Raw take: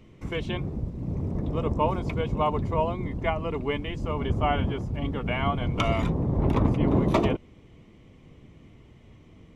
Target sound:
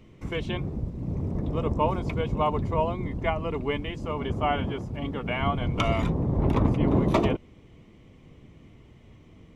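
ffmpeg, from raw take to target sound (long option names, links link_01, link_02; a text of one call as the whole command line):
ffmpeg -i in.wav -filter_complex "[0:a]asettb=1/sr,asplit=3[link_01][link_02][link_03];[link_01]atrim=end=3.904[link_04];[link_02]atrim=start=3.9:end=5.41,asetpts=PTS-STARTPTS,afade=type=in:duration=0.004:curve=qsin,afade=type=out:start_time=1.506:duration=0.004:curve=qsin,lowshelf=frequency=100:gain=-8[link_05];[link_03]atrim=start=5.406[link_06];[link_04][link_05]acrossfade=duration=0.004:curve1=hsin:curve2=qsin[link_07];[link_07][link_06]acrossfade=duration=0.004:curve1=qsin:curve2=hsin" out.wav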